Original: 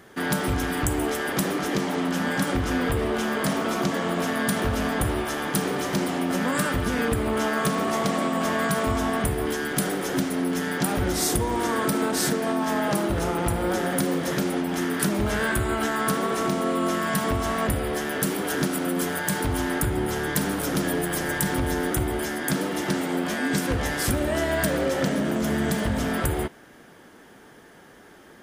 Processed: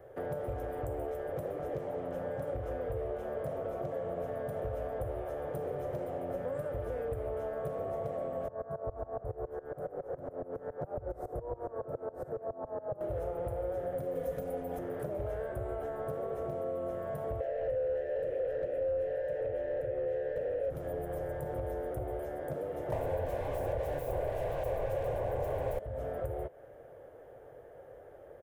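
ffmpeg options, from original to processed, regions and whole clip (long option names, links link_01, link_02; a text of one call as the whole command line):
ffmpeg -i in.wav -filter_complex "[0:a]asettb=1/sr,asplit=3[link_01][link_02][link_03];[link_01]atrim=end=8.484[link_04];[link_02]atrim=start=8.48:end=13.01,asetpts=PTS-STARTPTS,afade=type=in:duration=0.004:curve=qsin,afade=type=out:start_time=4.526:duration=0.004:curve=qsin,highshelf=frequency=1800:width_type=q:width=1.5:gain=-12.5,aeval=exprs='val(0)*pow(10,-23*if(lt(mod(-7.2*n/s,1),2*abs(-7.2)/1000),1-mod(-7.2*n/s,1)/(2*abs(-7.2)/1000),(mod(-7.2*n/s,1)-2*abs(-7.2)/1000)/(1-2*abs(-7.2)/1000))/20)':channel_layout=same[link_05];[link_03]atrim=start=13.006[link_06];[link_04][link_05]acrossfade=duration=0.004:curve1=hsin:curve2=qsin[link_07];[link_07][link_06]acrossfade=duration=0.004:curve1=qsin:curve2=hsin,asettb=1/sr,asplit=3[link_08][link_09][link_10];[link_08]atrim=end=14.154[link_11];[link_09]atrim=start=14.15:end=14.79,asetpts=PTS-STARTPTS,afade=type=in:duration=0.004:curve=qsin,afade=type=out:start_time=0.636:duration=0.004:curve=qsin,highshelf=frequency=5500:gain=10,aecho=1:1:4.1:0.76,atrim=end_sample=28224[link_12];[link_10]atrim=start=14.786[link_13];[link_11][link_12]acrossfade=duration=0.004:curve1=hsin:curve2=qsin[link_14];[link_14][link_13]acrossfade=duration=0.004:curve1=qsin:curve2=hsin,asettb=1/sr,asplit=3[link_15][link_16][link_17];[link_15]atrim=end=17.404[link_18];[link_16]atrim=start=17.4:end=20.7,asetpts=PTS-STARTPTS,afade=type=in:duration=0.004:curve=qsin,afade=type=out:start_time=3.296:duration=0.004:curve=qsin,asplit=3[link_19][link_20][link_21];[link_19]bandpass=frequency=530:width_type=q:width=8,volume=0dB[link_22];[link_20]bandpass=frequency=1840:width_type=q:width=8,volume=-6dB[link_23];[link_21]bandpass=frequency=2480:width_type=q:width=8,volume=-9dB[link_24];[link_22][link_23][link_24]amix=inputs=3:normalize=0,lowshelf=frequency=220:gain=-6.5,aeval=exprs='0.112*sin(PI/2*6.31*val(0)/0.112)':channel_layout=same[link_25];[link_17]atrim=start=20.696[link_26];[link_18][link_25]acrossfade=duration=0.004:curve1=hsin:curve2=qsin[link_27];[link_27][link_26]acrossfade=duration=0.004:curve1=qsin:curve2=hsin,asettb=1/sr,asplit=3[link_28][link_29][link_30];[link_28]atrim=end=22.924[link_31];[link_29]atrim=start=22.92:end=25.79,asetpts=PTS-STARTPTS,afade=type=in:duration=0.004:curve=qsin,afade=type=out:start_time=2.866:duration=0.004:curve=qsin,aeval=exprs='0.282*sin(PI/2*7.08*val(0)/0.282)':channel_layout=same,asuperstop=centerf=1300:order=4:qfactor=6.4[link_32];[link_30]atrim=start=25.786[link_33];[link_31][link_32]acrossfade=duration=0.004:curve1=hsin:curve2=qsin[link_34];[link_34][link_33]acrossfade=duration=0.004:curve1=qsin:curve2=hsin,firequalizer=gain_entry='entry(120,0);entry(200,-22);entry(530,9);entry(930,-11);entry(4500,-29);entry(14000,-14)':delay=0.05:min_phase=1,acrossover=split=200|1100[link_35][link_36][link_37];[link_35]acompressor=threshold=-41dB:ratio=4[link_38];[link_36]acompressor=threshold=-37dB:ratio=4[link_39];[link_37]acompressor=threshold=-55dB:ratio=4[link_40];[link_38][link_39][link_40]amix=inputs=3:normalize=0" out.wav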